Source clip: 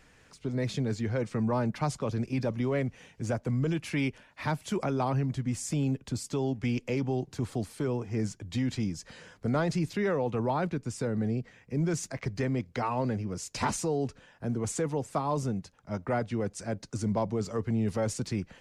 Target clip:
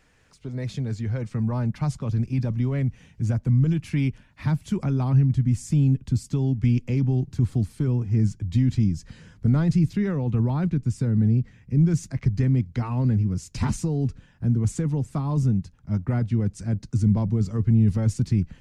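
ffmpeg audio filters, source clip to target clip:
-af "asubboost=boost=8.5:cutoff=190,volume=-2.5dB"

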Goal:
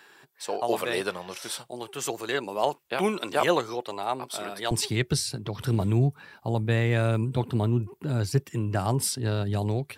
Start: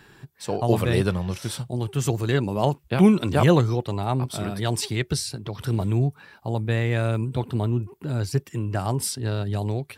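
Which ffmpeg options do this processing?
-af "asetnsamples=n=441:p=0,asendcmd='4.71 highpass f 81',highpass=490"

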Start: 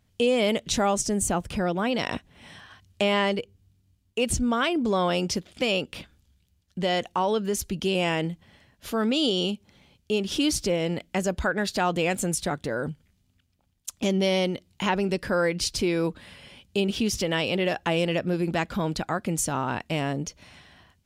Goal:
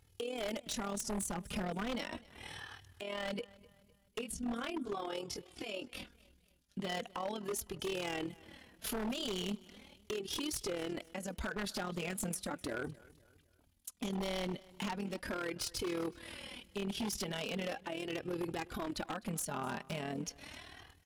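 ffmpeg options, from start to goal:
-filter_complex "[0:a]highpass=f=42:p=1,equalizer=f=11k:w=3.3:g=10.5,acompressor=threshold=-36dB:ratio=3,alimiter=level_in=2dB:limit=-24dB:level=0:latency=1:release=285,volume=-2dB,asplit=3[a][b][c];[a]afade=t=out:st=4.2:d=0.02[d];[b]flanger=delay=17:depth=3.1:speed=1.1,afade=t=in:st=4.2:d=0.02,afade=t=out:st=6.84:d=0.02[e];[c]afade=t=in:st=6.84:d=0.02[f];[d][e][f]amix=inputs=3:normalize=0,tremolo=f=39:d=0.667,flanger=delay=2.3:depth=2.7:regen=4:speed=0.38:shape=sinusoidal,aeval=exprs='0.0141*(abs(mod(val(0)/0.0141+3,4)-2)-1)':c=same,aecho=1:1:255|510|765:0.0794|0.0326|0.0134,volume=6dB"

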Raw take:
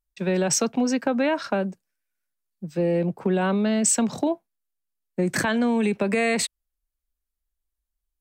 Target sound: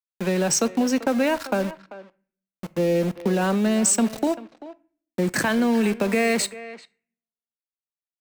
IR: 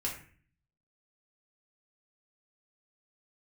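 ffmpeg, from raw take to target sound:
-filter_complex "[0:a]highpass=f=69:p=1,bandreject=f=3.4k:w=17,aeval=exprs='val(0)*gte(abs(val(0)),0.0282)':c=same,asplit=2[a][b];[b]adelay=390,highpass=300,lowpass=3.4k,asoftclip=type=hard:threshold=-17dB,volume=-15dB[c];[a][c]amix=inputs=2:normalize=0,asplit=2[d][e];[1:a]atrim=start_sample=2205[f];[e][f]afir=irnorm=-1:irlink=0,volume=-16.5dB[g];[d][g]amix=inputs=2:normalize=0"

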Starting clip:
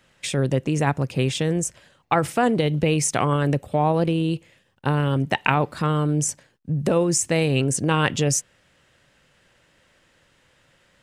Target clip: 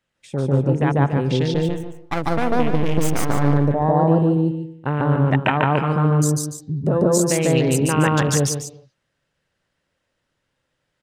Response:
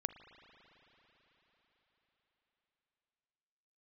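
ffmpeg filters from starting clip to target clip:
-filter_complex "[0:a]afwtdn=0.0282,asettb=1/sr,asplit=3[a][b][c];[a]atrim=end=1.544[d];[b]atrim=start=1.54:end=3.43,asetpts=PTS-STARTPTS,afade=t=in:d=0.004:c=qsin,afade=t=out:st=1.886:d=0.004:c=qsin,aeval=exprs='max(val(0),0)':c=same[e];[c]atrim=start=3.426[f];[d][e]acrossfade=d=0.004:c1=hsin:c2=qsin[g];[g][f]acrossfade=d=0.004:c1=qsin:c2=hsin,asplit=2[h][i];[i]adelay=145.8,volume=-6dB,highshelf=f=4k:g=-3.28[j];[h][j]amix=inputs=2:normalize=0,asplit=2[k][l];[1:a]atrim=start_sample=2205,afade=t=out:st=0.32:d=0.01,atrim=end_sample=14553,adelay=146[m];[l][m]afir=irnorm=-1:irlink=0,volume=0.5dB[n];[k][n]amix=inputs=2:normalize=0,volume=-1dB"

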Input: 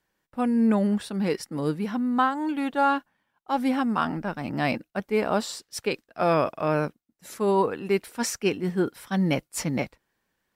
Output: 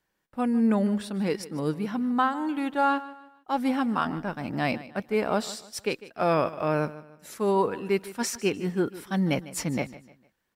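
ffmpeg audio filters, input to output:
-af "aecho=1:1:151|302|453:0.141|0.0509|0.0183,volume=-1.5dB"

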